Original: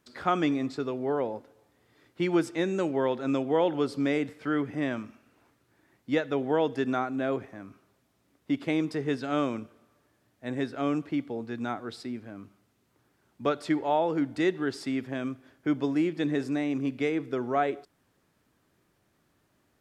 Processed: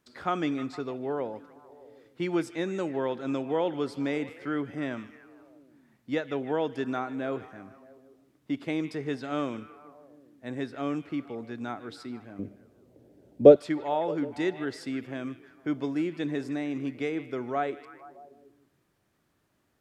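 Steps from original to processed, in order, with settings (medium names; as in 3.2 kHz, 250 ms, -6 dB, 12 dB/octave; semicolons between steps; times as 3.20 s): 12.39–13.56 s: resonant low shelf 790 Hz +12.5 dB, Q 3; on a send: repeats whose band climbs or falls 154 ms, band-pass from 2.6 kHz, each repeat -0.7 oct, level -11 dB; on the sum: trim -3 dB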